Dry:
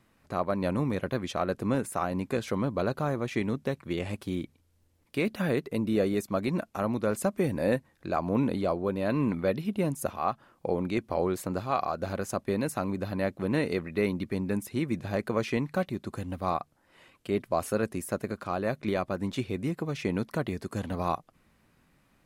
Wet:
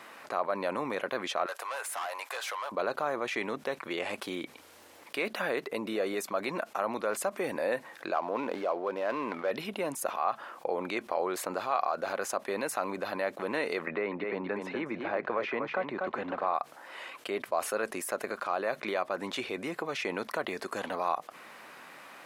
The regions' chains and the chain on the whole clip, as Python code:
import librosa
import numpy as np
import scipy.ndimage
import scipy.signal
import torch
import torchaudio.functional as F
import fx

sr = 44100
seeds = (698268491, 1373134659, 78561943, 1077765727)

y = fx.chain(x, sr, fx.highpass(hz=680.0, slope=24),
    fx.high_shelf(hz=6200.0, db=7.0),
    fx.tube_stage(drive_db=38.0, bias=0.25), at=(1.46, 2.72))
y = fx.chain(y, sr, fx.median_filter(points=15),
    fx.bass_treble(bass_db=-7, treble_db=-5), at=(8.14, 9.51))
y = fx.chain(y, sr, fx.lowpass(hz=2100.0, slope=12),
    fx.echo_single(ms=242, db=-8.5),
    fx.band_squash(depth_pct=70), at=(13.87, 16.54))
y = scipy.signal.sosfilt(scipy.signal.butter(2, 640.0, 'highpass', fs=sr, output='sos'), y)
y = fx.high_shelf(y, sr, hz=3700.0, db=-9.0)
y = fx.env_flatten(y, sr, amount_pct=50)